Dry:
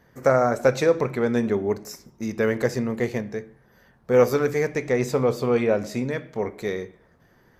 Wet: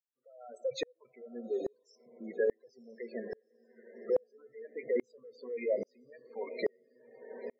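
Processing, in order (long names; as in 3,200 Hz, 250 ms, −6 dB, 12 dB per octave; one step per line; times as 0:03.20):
fade in at the beginning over 0.71 s
dynamic equaliser 1,400 Hz, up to −5 dB, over −45 dBFS, Q 2.4
reverb reduction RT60 0.52 s
automatic gain control gain up to 14 dB
meter weighting curve A
gate on every frequency bin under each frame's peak −10 dB strong
convolution reverb RT60 1.0 s, pre-delay 6 ms, DRR 17 dB
downward compressor 1.5 to 1, threshold −37 dBFS, peak gain reduction 9 dB
feedback delay with all-pass diffusion 900 ms, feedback 64%, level −12 dB
spectral peaks only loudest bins 32
tremolo with a ramp in dB swelling 1.2 Hz, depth 39 dB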